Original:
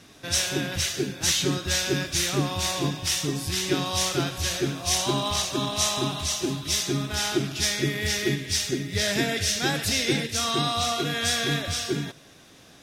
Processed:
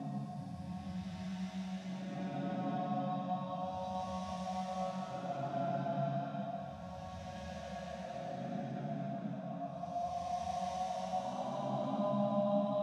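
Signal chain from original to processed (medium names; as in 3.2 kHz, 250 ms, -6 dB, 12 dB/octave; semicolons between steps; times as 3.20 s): Paulstretch 6.8×, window 0.25 s, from 3.36 s; two resonant band-passes 370 Hz, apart 1.7 oct; trim +1.5 dB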